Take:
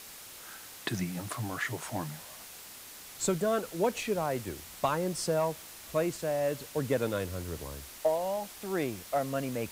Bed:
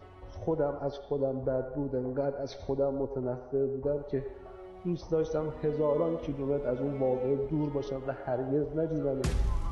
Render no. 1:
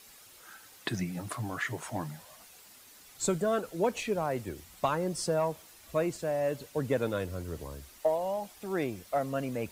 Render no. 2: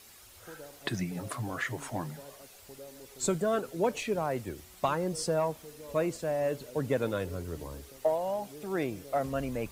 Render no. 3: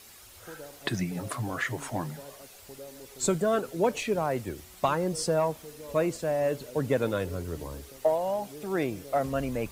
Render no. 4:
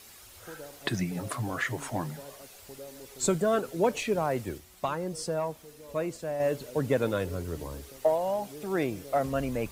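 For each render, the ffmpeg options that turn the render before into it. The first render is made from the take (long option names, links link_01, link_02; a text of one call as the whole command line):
ffmpeg -i in.wav -af "afftdn=noise_reduction=9:noise_floor=-48" out.wav
ffmpeg -i in.wav -i bed.wav -filter_complex "[1:a]volume=-19dB[link_01];[0:a][link_01]amix=inputs=2:normalize=0" out.wav
ffmpeg -i in.wav -af "volume=3dB" out.wav
ffmpeg -i in.wav -filter_complex "[0:a]asplit=3[link_01][link_02][link_03];[link_01]atrim=end=4.582[link_04];[link_02]atrim=start=4.578:end=6.402,asetpts=PTS-STARTPTS,volume=-5dB[link_05];[link_03]atrim=start=6.398[link_06];[link_04][link_05]acrossfade=duration=0.004:curve1=hsin:curve2=hsin[link_07];[link_07][link_06]acrossfade=duration=0.004:curve1=hsin:curve2=hsin" out.wav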